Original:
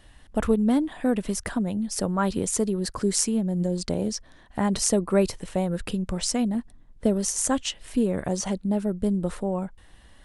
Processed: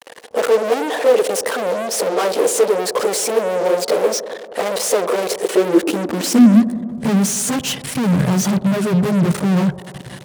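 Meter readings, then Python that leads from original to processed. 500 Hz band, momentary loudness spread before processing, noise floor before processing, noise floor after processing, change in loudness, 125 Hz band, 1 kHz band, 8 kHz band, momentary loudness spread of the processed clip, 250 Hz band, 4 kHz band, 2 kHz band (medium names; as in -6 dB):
+11.5 dB, 7 LU, -53 dBFS, -36 dBFS, +9.0 dB, +9.0 dB, +10.0 dB, +6.0 dB, 7 LU, +8.0 dB, +8.5 dB, +12.5 dB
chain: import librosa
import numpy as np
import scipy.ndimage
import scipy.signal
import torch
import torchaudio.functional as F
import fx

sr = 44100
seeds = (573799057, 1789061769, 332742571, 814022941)

p1 = fx.chorus_voices(x, sr, voices=2, hz=1.5, base_ms=14, depth_ms=3.0, mix_pct=70)
p2 = fx.fuzz(p1, sr, gain_db=45.0, gate_db=-51.0)
p3 = fx.filter_sweep_highpass(p2, sr, from_hz=480.0, to_hz=140.0, start_s=5.2, end_s=7.32, q=6.0)
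p4 = p3 + fx.echo_wet_bandpass(p3, sr, ms=94, feedback_pct=77, hz=430.0, wet_db=-14.0, dry=0)
y = F.gain(torch.from_numpy(p4), -6.5).numpy()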